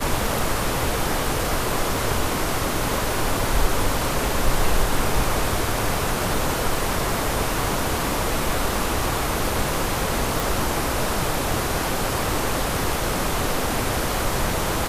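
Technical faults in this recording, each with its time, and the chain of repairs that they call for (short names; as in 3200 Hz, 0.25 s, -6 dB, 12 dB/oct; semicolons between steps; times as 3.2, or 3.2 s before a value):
10.4 pop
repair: de-click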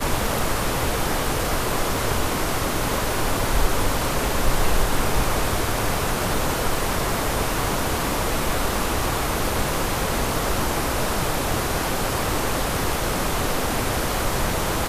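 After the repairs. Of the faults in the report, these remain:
none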